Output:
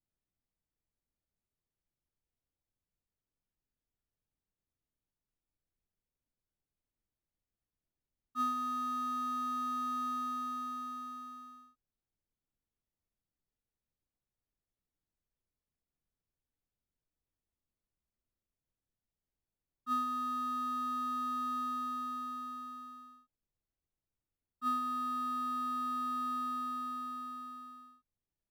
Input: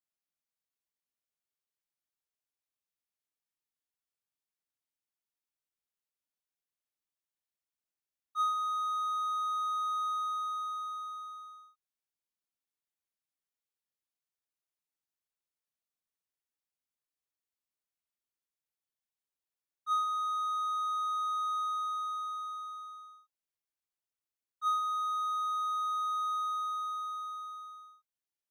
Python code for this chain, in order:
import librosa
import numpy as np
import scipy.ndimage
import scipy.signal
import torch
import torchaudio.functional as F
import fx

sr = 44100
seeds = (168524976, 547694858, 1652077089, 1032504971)

p1 = fx.tilt_eq(x, sr, slope=-4.5)
p2 = fx.sample_hold(p1, sr, seeds[0], rate_hz=1500.0, jitter_pct=0)
p3 = p1 + F.gain(torch.from_numpy(p2), -9.0).numpy()
y = F.gain(torch.from_numpy(p3), -1.5).numpy()